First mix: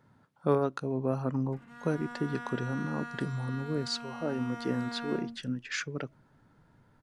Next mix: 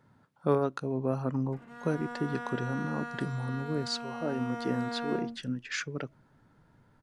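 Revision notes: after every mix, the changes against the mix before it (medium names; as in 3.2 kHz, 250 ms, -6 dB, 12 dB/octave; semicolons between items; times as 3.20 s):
background: add peaking EQ 520 Hz +10 dB 1.2 oct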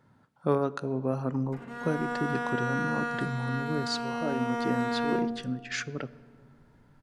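background +6.5 dB; reverb: on, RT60 2.1 s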